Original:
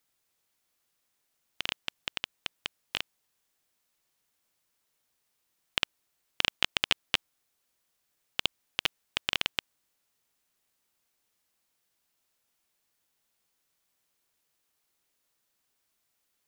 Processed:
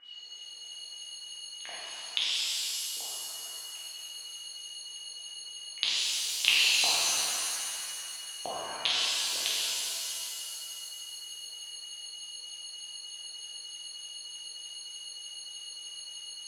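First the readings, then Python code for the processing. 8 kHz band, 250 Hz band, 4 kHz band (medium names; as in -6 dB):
+17.5 dB, -6.5 dB, +5.0 dB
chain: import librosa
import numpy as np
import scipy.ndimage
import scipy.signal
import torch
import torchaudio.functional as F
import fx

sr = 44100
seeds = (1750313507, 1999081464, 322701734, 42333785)

p1 = fx.block_float(x, sr, bits=3)
p2 = fx.auto_swell(p1, sr, attack_ms=482.0)
p3 = fx.highpass(p2, sr, hz=270.0, slope=6)
p4 = fx.high_shelf(p3, sr, hz=3400.0, db=9.0)
p5 = p4 + 10.0 ** (-21.5 / 20.0) * np.pad(p4, (int(749 * sr / 1000.0), 0))[:len(p4)]
p6 = p5 + 10.0 ** (-61.0 / 20.0) * np.sin(2.0 * np.pi * 2900.0 * np.arange(len(p5)) / sr)
p7 = fx.peak_eq(p6, sr, hz=1400.0, db=-6.0, octaves=0.32)
p8 = fx.filter_lfo_lowpass(p7, sr, shape='sine', hz=3.3, low_hz=410.0, high_hz=4200.0, q=5.5)
p9 = fx.level_steps(p8, sr, step_db=24)
p10 = p8 + (p9 * librosa.db_to_amplitude(2.5))
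p11 = fx.doubler(p10, sr, ms=48.0, db=-6)
p12 = fx.rev_shimmer(p11, sr, seeds[0], rt60_s=2.5, semitones=7, shimmer_db=-2, drr_db=-7.5)
y = p12 * librosa.db_to_amplitude(2.5)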